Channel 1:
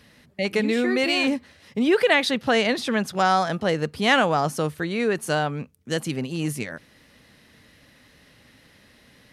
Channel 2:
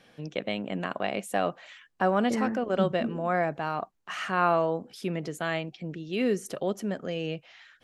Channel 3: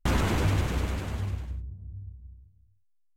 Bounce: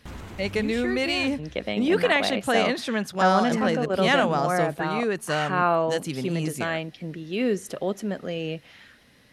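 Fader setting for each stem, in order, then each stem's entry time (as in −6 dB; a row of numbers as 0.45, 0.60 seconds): −3.0, +2.0, −14.0 decibels; 0.00, 1.20, 0.00 seconds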